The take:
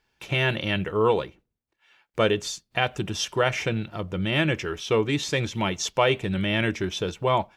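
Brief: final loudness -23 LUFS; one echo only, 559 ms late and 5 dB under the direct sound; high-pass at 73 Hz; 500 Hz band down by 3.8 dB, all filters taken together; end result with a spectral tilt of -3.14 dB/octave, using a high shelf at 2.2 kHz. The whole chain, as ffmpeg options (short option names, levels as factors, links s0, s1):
-af "highpass=73,equalizer=f=500:t=o:g=-5,highshelf=f=2200:g=7.5,aecho=1:1:559:0.562"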